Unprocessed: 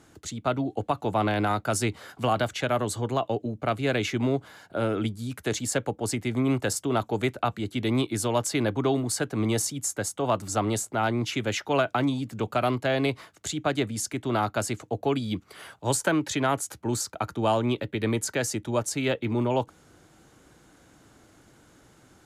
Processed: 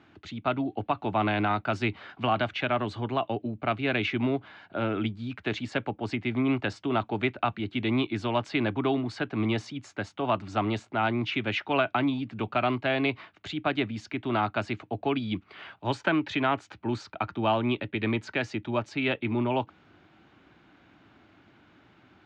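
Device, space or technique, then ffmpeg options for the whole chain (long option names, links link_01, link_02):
guitar cabinet: -af "highpass=86,equalizer=frequency=140:width_type=q:width=4:gain=-5,equalizer=frequency=490:width_type=q:width=4:gain=-9,equalizer=frequency=2500:width_type=q:width=4:gain=5,lowpass=frequency=3700:width=0.5412,lowpass=frequency=3700:width=1.3066"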